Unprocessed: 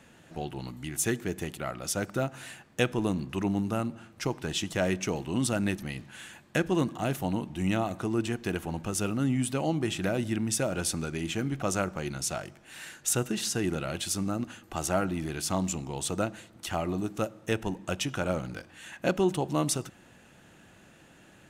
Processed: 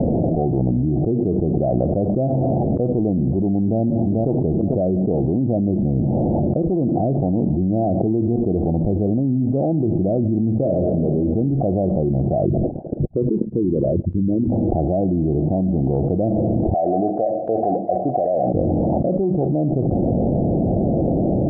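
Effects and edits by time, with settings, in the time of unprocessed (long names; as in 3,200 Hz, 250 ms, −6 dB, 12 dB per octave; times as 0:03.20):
0:03.62–0:04.46: delay throw 440 ms, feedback 40%, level −13 dB
0:10.50–0:11.07: thrown reverb, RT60 1.1 s, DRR 2 dB
0:12.45–0:14.52: spectral envelope exaggerated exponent 3
0:16.74–0:18.54: formant filter a
whole clip: Butterworth low-pass 730 Hz 72 dB per octave; envelope flattener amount 100%; level +3 dB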